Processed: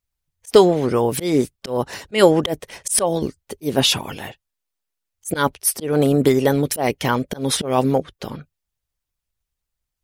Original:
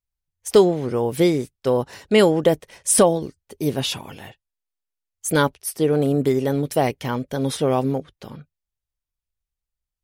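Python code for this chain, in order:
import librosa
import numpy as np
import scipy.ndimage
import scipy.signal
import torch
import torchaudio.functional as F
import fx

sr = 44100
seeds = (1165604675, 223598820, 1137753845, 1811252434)

y = fx.auto_swell(x, sr, attack_ms=193.0)
y = fx.hpss(y, sr, part='percussive', gain_db=7)
y = y * librosa.db_to_amplitude(2.5)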